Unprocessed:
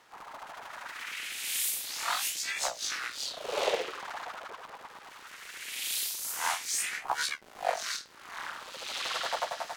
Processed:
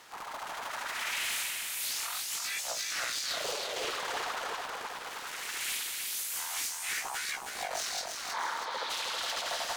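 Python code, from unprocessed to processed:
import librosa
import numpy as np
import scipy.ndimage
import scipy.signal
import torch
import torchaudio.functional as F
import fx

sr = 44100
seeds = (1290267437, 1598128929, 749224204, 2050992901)

y = fx.high_shelf(x, sr, hz=3100.0, db=7.5)
y = fx.over_compress(y, sr, threshold_db=-35.0, ratio=-1.0)
y = 10.0 ** (-28.5 / 20.0) * np.tanh(y / 10.0 ** (-28.5 / 20.0))
y = fx.cabinet(y, sr, low_hz=240.0, low_slope=12, high_hz=4300.0, hz=(470.0, 920.0, 2700.0), db=(6, 9, -10), at=(8.32, 8.89), fade=0.02)
y = fx.echo_feedback(y, sr, ms=319, feedback_pct=51, wet_db=-5.0)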